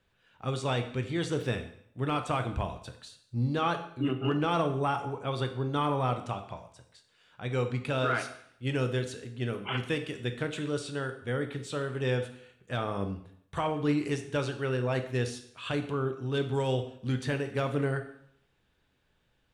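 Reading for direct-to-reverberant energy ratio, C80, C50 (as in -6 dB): 6.5 dB, 13.5 dB, 10.5 dB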